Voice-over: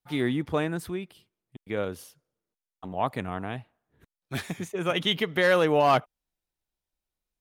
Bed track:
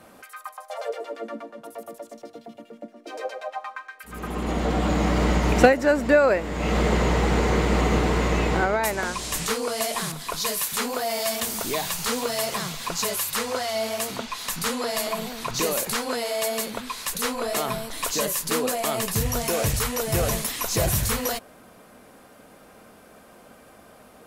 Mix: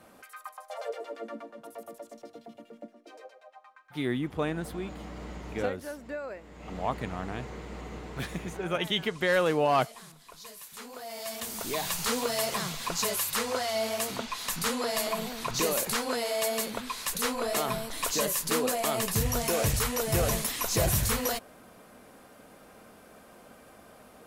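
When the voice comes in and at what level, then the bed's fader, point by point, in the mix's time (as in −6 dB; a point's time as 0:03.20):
3.85 s, −3.5 dB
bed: 0:02.86 −5.5 dB
0:03.35 −20 dB
0:10.61 −20 dB
0:11.91 −3 dB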